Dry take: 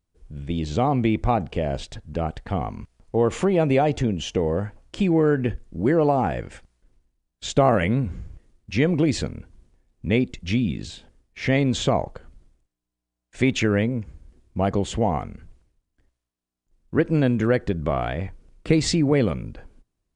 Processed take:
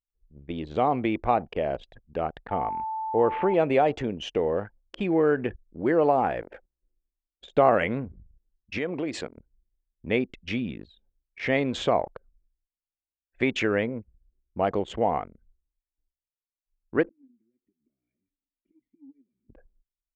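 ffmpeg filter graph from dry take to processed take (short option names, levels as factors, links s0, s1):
-filter_complex "[0:a]asettb=1/sr,asplit=3[s0][s1][s2];[s0]atrim=end=2.514[s3];[s1]atrim=start=2.51:end=3.54,asetpts=PTS-STARTPTS,afade=t=in:d=0.004:c=qsin,afade=t=out:st=1.026:d=0.004:c=qsin,lowpass=f=2700:w=0.5412,lowpass=f=2700:w=1.3066,aeval=exprs='val(0)+0.0398*sin(2*PI*880*n/s)':c=same[s4];[s2]atrim=start=3.536[s5];[s3][s4]acrossfade=d=0.004:c1=hsin:c2=qsin[s6];[s6][s5]acrossfade=d=0.004:c1=qsin:c2=hsin,asettb=1/sr,asplit=3[s7][s8][s9];[s7]atrim=end=6.424[s10];[s8]atrim=start=6.42:end=7.56,asetpts=PTS-STARTPTS,afade=t=in:d=0.004:c=qsin,afade=t=out:st=1.136:d=0.004:c=qsin,equalizer=f=460:w=0.49:g=10.5,acompressor=threshold=0.0251:ratio=16:attack=3.2:release=140:knee=1:detection=peak[s11];[s9]atrim=start=7.556[s12];[s10][s11]acrossfade=d=0.004:c1=hsin:c2=qsin[s13];[s13][s12]acrossfade=d=0.004:c1=qsin:c2=hsin,asettb=1/sr,asplit=3[s14][s15][s16];[s14]atrim=end=8.784[s17];[s15]atrim=start=8.78:end=9.37,asetpts=PTS-STARTPTS,afade=t=in:d=0.004:c=qsin,afade=t=out:st=0.586:d=0.004:c=qsin,highpass=f=190:p=1,equalizer=f=7500:w=4.2:g=4.5,acompressor=threshold=0.0794:ratio=3:attack=3.2:release=140:knee=1:detection=peak[s18];[s16]atrim=start=9.366[s19];[s17][s18]acrossfade=d=0.004:c1=hsin:c2=qsin[s20];[s20][s19]acrossfade=d=0.004:c1=qsin:c2=hsin,asettb=1/sr,asplit=3[s21][s22][s23];[s21]atrim=end=17.094[s24];[s22]atrim=start=17.09:end=19.49,asetpts=PTS-STARTPTS,afade=t=in:d=0.004:c=qsin,afade=t=out:st=2.396:d=0.004:c=qsin,acompressor=threshold=0.0224:ratio=8:attack=3.2:release=140:knee=1:detection=peak,asplit=3[s25][s26][s27];[s25]bandpass=f=270:t=q:w=8,volume=1[s28];[s26]bandpass=f=2290:t=q:w=8,volume=0.501[s29];[s27]bandpass=f=3010:t=q:w=8,volume=0.355[s30];[s28][s29][s30]amix=inputs=3:normalize=0[s31];[s23]atrim=start=19.486[s32];[s24][s31]acrossfade=d=0.004:c1=hsin:c2=qsin[s33];[s33][s32]acrossfade=d=0.004:c1=qsin:c2=hsin,bass=f=250:g=-13,treble=f=4000:g=-12,anlmdn=1"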